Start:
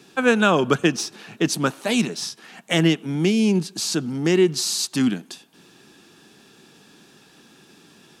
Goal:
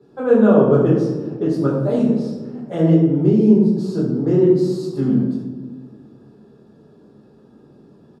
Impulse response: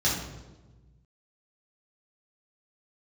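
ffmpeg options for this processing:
-filter_complex "[0:a]firequalizer=gain_entry='entry(240,0);entry(490,7);entry(710,-1);entry(2500,-23);entry(7400,-18)':delay=0.05:min_phase=1[a];[1:a]atrim=start_sample=2205,asetrate=33516,aresample=44100[b];[a][b]afir=irnorm=-1:irlink=0,volume=-12.5dB"

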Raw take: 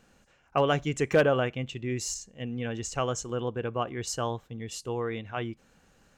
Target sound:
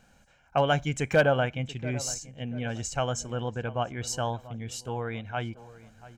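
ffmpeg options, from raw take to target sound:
-filter_complex "[0:a]aecho=1:1:1.3:0.53,asplit=2[a][b];[b]adelay=686,lowpass=f=1.8k:p=1,volume=-17dB,asplit=2[c][d];[d]adelay=686,lowpass=f=1.8k:p=1,volume=0.42,asplit=2[e][f];[f]adelay=686,lowpass=f=1.8k:p=1,volume=0.42,asplit=2[g][h];[h]adelay=686,lowpass=f=1.8k:p=1,volume=0.42[i];[a][c][e][g][i]amix=inputs=5:normalize=0"

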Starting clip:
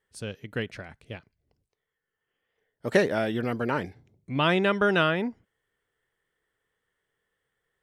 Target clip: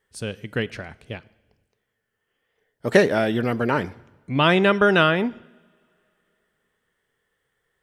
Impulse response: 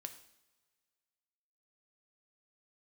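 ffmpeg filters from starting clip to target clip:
-filter_complex "[0:a]asplit=2[a][b];[1:a]atrim=start_sample=2205,asetrate=31311,aresample=44100[c];[b][c]afir=irnorm=-1:irlink=0,volume=-8dB[d];[a][d]amix=inputs=2:normalize=0,volume=3.5dB"

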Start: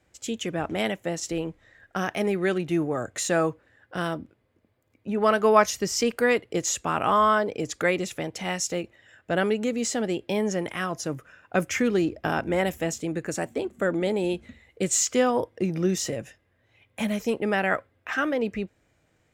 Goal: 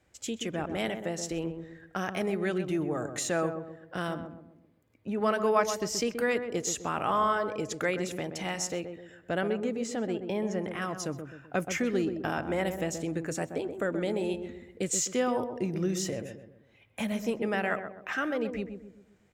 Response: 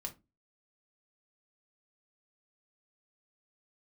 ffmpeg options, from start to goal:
-filter_complex "[0:a]asettb=1/sr,asplit=3[a][b][c];[a]atrim=end=9.414[d];[b]atrim=start=9.41:end=10.82,asetpts=PTS-STARTPTS,afade=t=in:d=0.004:c=qsin,afade=t=out:st=1.406:d=0.004:c=qsin,equalizer=f=14k:t=o:w=2.6:g=-9[e];[c]atrim=start=10.816[f];[d][e]acrossfade=d=0.004:c1=hsin:c2=qsin[g];[g][f]acrossfade=d=0.004:c1=qsin:c2=hsin,asplit=2[h][i];[i]acompressor=threshold=-31dB:ratio=6,volume=1dB[j];[h][j]amix=inputs=2:normalize=0,asplit=2[k][l];[l]adelay=128,lowpass=f=920:p=1,volume=-6.5dB,asplit=2[m][n];[n]adelay=128,lowpass=f=920:p=1,volume=0.46,asplit=2[o][p];[p]adelay=128,lowpass=f=920:p=1,volume=0.46,asplit=2[q][r];[r]adelay=128,lowpass=f=920:p=1,volume=0.46,asplit=2[s][t];[t]adelay=128,lowpass=f=920:p=1,volume=0.46[u];[k][m][o][q][s][u]amix=inputs=6:normalize=0,volume=-8.5dB"

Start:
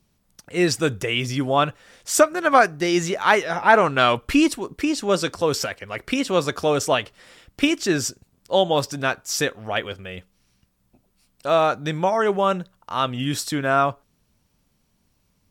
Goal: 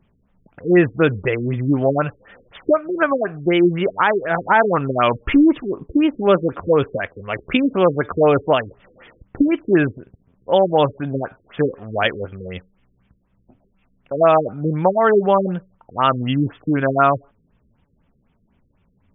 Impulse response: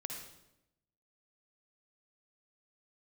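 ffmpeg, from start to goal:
-af "atempo=0.81,alimiter=limit=-9.5dB:level=0:latency=1:release=248,afftfilt=real='re*lt(b*sr/1024,480*pow(3700/480,0.5+0.5*sin(2*PI*4*pts/sr)))':imag='im*lt(b*sr/1024,480*pow(3700/480,0.5+0.5*sin(2*PI*4*pts/sr)))':win_size=1024:overlap=0.75,volume=6dB"

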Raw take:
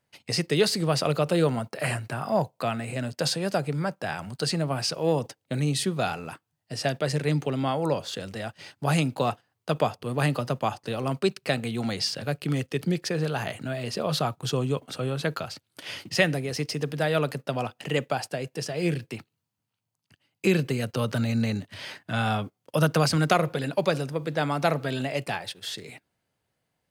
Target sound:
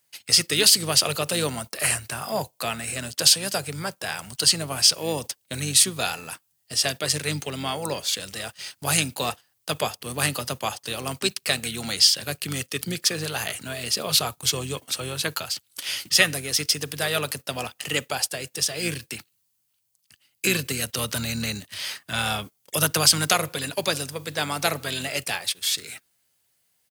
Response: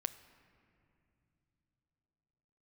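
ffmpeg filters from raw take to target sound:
-filter_complex "[0:a]asplit=2[a][b];[b]asetrate=29433,aresample=44100,atempo=1.49831,volume=-11dB[c];[a][c]amix=inputs=2:normalize=0,crystalizer=i=10:c=0,volume=-6dB"

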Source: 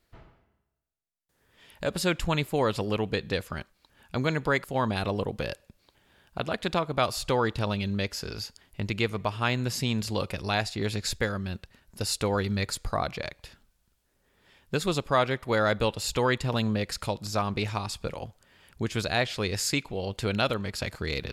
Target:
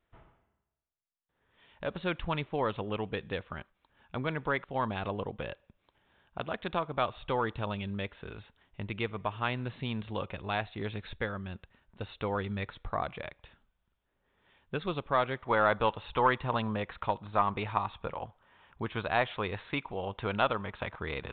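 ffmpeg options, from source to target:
-af "asetnsamples=n=441:p=0,asendcmd='15.45 equalizer g 12.5',equalizer=f=1k:w=1.2:g=4.5,aeval=exprs='0.631*(cos(1*acos(clip(val(0)/0.631,-1,1)))-cos(1*PI/2))+0.0224*(cos(4*acos(clip(val(0)/0.631,-1,1)))-cos(4*PI/2))':c=same,aresample=8000,aresample=44100,volume=-7dB"

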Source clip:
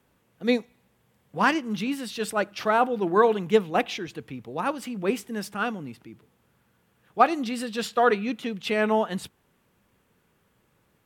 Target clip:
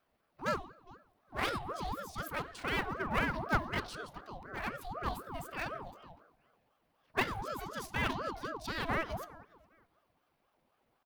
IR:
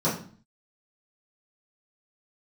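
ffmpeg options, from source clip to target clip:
-filter_complex "[0:a]highshelf=f=4.7k:g=-11,asetrate=66075,aresample=44100,atempo=0.66742,asplit=2[a][b];[b]adelay=410,lowpass=f=2.9k:p=1,volume=-23dB,asplit=2[c][d];[d]adelay=410,lowpass=f=2.9k:p=1,volume=0.23[e];[a][c][e]amix=inputs=3:normalize=0,aeval=exprs='clip(val(0),-1,0.0398)':c=same,aexciter=amount=2.9:drive=3.8:freq=9.3k,asplit=2[f][g];[1:a]atrim=start_sample=2205,asetrate=25578,aresample=44100[h];[g][h]afir=irnorm=-1:irlink=0,volume=-26dB[i];[f][i]amix=inputs=2:normalize=0,aeval=exprs='val(0)*sin(2*PI*660*n/s+660*0.5/4*sin(2*PI*4*n/s))':c=same,volume=-7.5dB"

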